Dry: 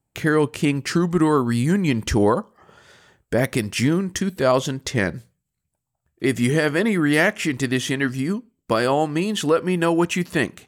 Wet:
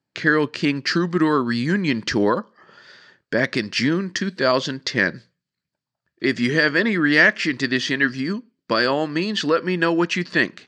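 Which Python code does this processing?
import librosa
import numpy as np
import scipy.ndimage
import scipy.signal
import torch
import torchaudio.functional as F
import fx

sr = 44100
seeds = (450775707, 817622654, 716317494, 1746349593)

y = fx.cabinet(x, sr, low_hz=190.0, low_slope=12, high_hz=5600.0, hz=(440.0, 770.0, 1700.0, 4600.0), db=(-3, -8, 7, 10))
y = y * librosa.db_to_amplitude(1.0)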